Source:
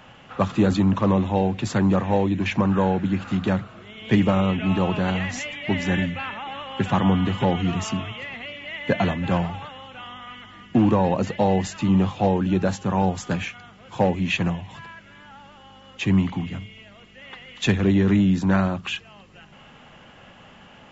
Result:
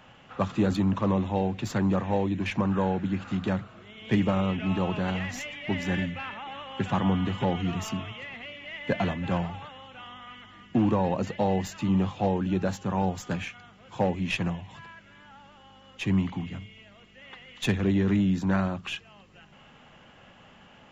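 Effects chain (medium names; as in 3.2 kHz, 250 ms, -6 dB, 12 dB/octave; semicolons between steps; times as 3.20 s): tracing distortion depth 0.028 ms; trim -5.5 dB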